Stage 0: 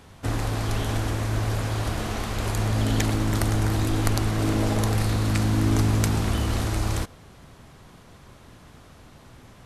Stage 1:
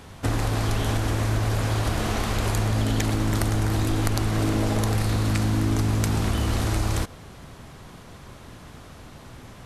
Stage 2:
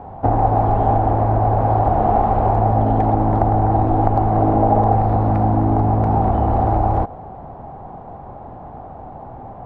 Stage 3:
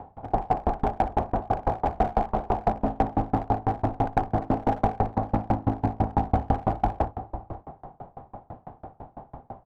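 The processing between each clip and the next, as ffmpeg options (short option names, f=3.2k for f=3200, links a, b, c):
-af "acompressor=threshold=-25dB:ratio=4,volume=5dB"
-af "lowpass=f=780:t=q:w=7,volume=5dB"
-filter_complex "[0:a]asplit=2[a][b];[b]aecho=0:1:60|98|105|571:0.668|0.141|0.168|0.316[c];[a][c]amix=inputs=2:normalize=0,aeval=exprs='clip(val(0),-1,0.299)':c=same,aeval=exprs='val(0)*pow(10,-33*if(lt(mod(6*n/s,1),2*abs(6)/1000),1-mod(6*n/s,1)/(2*abs(6)/1000),(mod(6*n/s,1)-2*abs(6)/1000)/(1-2*abs(6)/1000))/20)':c=same,volume=-2dB"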